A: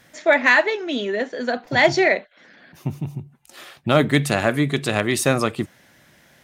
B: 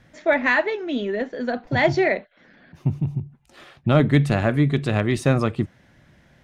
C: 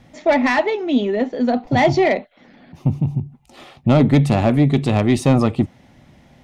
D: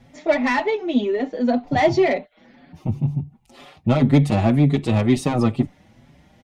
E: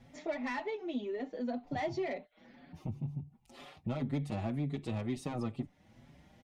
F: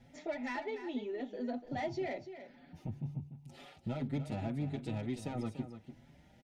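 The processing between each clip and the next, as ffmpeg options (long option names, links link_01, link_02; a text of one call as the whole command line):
ffmpeg -i in.wav -af "aemphasis=mode=reproduction:type=bsi,volume=-3.5dB" out.wav
ffmpeg -i in.wav -af "asoftclip=type=tanh:threshold=-13dB,equalizer=frequency=250:width_type=o:width=0.33:gain=6,equalizer=frequency=800:width_type=o:width=0.33:gain=6,equalizer=frequency=1600:width_type=o:width=0.33:gain=-11,volume=5dB" out.wav
ffmpeg -i in.wav -filter_complex "[0:a]asplit=2[link_01][link_02];[link_02]adelay=5.6,afreqshift=2[link_03];[link_01][link_03]amix=inputs=2:normalize=1" out.wav
ffmpeg -i in.wav -af "acompressor=threshold=-34dB:ratio=2,volume=-7.5dB" out.wav
ffmpeg -i in.wav -af "asuperstop=centerf=1100:order=12:qfactor=6.6,aecho=1:1:293:0.282,volume=-2dB" out.wav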